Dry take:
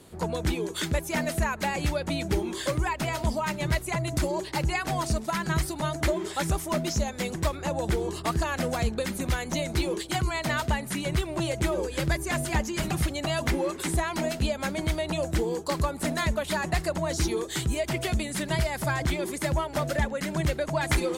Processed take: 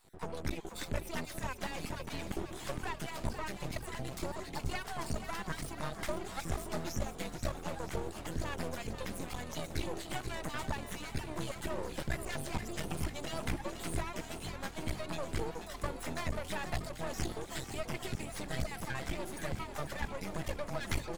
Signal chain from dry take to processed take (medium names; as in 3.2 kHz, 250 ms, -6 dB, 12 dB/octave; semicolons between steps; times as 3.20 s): random holes in the spectrogram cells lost 27%; half-wave rectifier; frequency-shifting echo 486 ms, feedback 63%, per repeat +41 Hz, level -10 dB; trim -6 dB